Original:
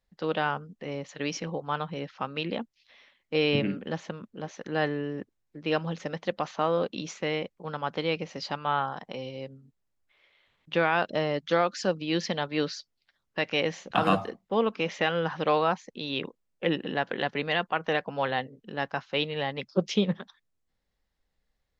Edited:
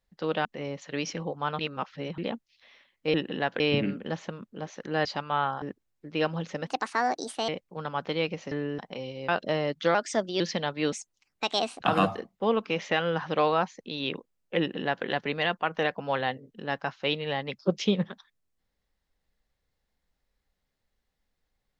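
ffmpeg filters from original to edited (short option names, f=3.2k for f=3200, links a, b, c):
-filter_complex "[0:a]asplit=17[a][b][c][d][e][f][g][h][i][j][k][l][m][n][o][p][q];[a]atrim=end=0.452[r];[b]atrim=start=0.718:end=1.862[s];[c]atrim=start=1.858:end=2.452,asetpts=PTS-STARTPTS,areverse[t];[d]atrim=start=2.448:end=3.412[u];[e]atrim=start=16.688:end=17.152[v];[f]atrim=start=3.408:end=4.862[w];[g]atrim=start=8.398:end=8.972[x];[h]atrim=start=5.128:end=6.184[y];[i]atrim=start=6.18:end=7.37,asetpts=PTS-STARTPTS,asetrate=64386,aresample=44100[z];[j]atrim=start=7.366:end=8.402[aa];[k]atrim=start=4.858:end=5.132[ab];[l]atrim=start=8.968:end=9.472[ac];[m]atrim=start=10.948:end=11.614[ad];[n]atrim=start=11.61:end=12.15,asetpts=PTS-STARTPTS,asetrate=52038,aresample=44100,atrim=end_sample=20181,asetpts=PTS-STARTPTS[ae];[o]atrim=start=12.146:end=12.674[af];[p]atrim=start=12.67:end=13.89,asetpts=PTS-STARTPTS,asetrate=61740,aresample=44100[ag];[q]atrim=start=13.886[ah];[r][s]acrossfade=d=0.004:c1=hsin:c2=hsin[ai];[ai][t]acrossfade=d=0.004:c1=hsin:c2=hsin[aj];[aj][u]acrossfade=d=0.004:c1=hsin:c2=hsin[ak];[ak][v]acrossfade=d=0.004:c1=hsin:c2=hsin[al];[al][w]acrossfade=d=0.004:c1=hsin:c2=hsin[am];[am][x]acrossfade=d=0.004:c1=hsin:c2=hsin[an];[an][y]acrossfade=d=0.004:c1=hsin:c2=hsin[ao];[ao][z]acrossfade=d=0.004:c1=hsin:c2=hsin[ap];[ap][aa]acrossfade=d=0.004:c1=hsin:c2=hsin[aq];[aq][ab]acrossfade=d=0.004:c1=hsin:c2=hsin[ar];[ar][ac]acrossfade=d=0.004:c1=hsin:c2=hsin[as];[as][ad]acrossfade=d=0.004:c1=hsin:c2=hsin[at];[at][ae]acrossfade=d=0.004:c1=hsin:c2=hsin[au];[au][af]acrossfade=d=0.004:c1=hsin:c2=hsin[av];[av][ag]acrossfade=d=0.004:c1=hsin:c2=hsin[aw];[aw][ah]acrossfade=d=0.004:c1=hsin:c2=hsin"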